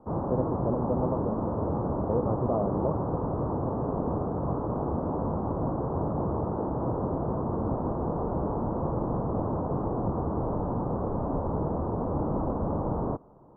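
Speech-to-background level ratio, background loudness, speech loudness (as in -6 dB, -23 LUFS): -2.0 dB, -30.5 LUFS, -32.5 LUFS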